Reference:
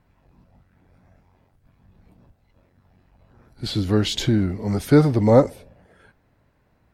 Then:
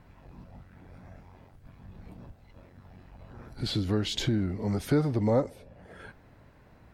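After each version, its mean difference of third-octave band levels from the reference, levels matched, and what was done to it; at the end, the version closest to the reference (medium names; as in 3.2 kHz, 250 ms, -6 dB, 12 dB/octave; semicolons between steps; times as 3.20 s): 2.5 dB: treble shelf 7.1 kHz -4.5 dB; compression 2:1, threshold -44 dBFS, peak gain reduction 19 dB; trim +7 dB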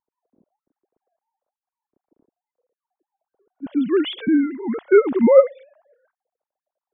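14.5 dB: formants replaced by sine waves; level-controlled noise filter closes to 340 Hz, open at -17.5 dBFS; trim +1.5 dB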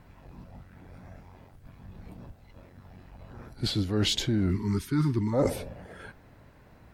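6.0 dB: spectral selection erased 4.50–5.34 s, 420–870 Hz; reverse; compression 16:1, threshold -31 dBFS, peak gain reduction 23 dB; reverse; trim +8.5 dB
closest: first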